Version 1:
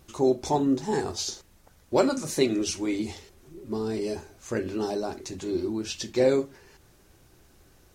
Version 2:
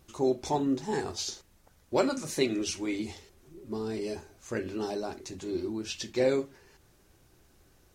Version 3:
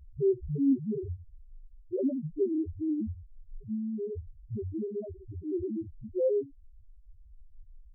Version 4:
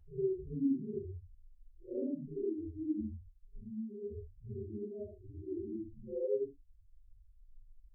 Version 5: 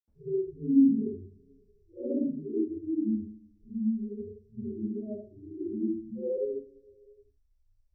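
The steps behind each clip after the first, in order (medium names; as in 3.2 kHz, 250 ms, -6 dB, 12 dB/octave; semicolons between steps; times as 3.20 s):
dynamic bell 2.4 kHz, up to +4 dB, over -43 dBFS, Q 0.89; trim -4.5 dB
tilt EQ -4.5 dB/octave; loudest bins only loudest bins 1
phase randomisation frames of 200 ms; trim -7 dB
reverberation, pre-delay 77 ms; trim -2 dB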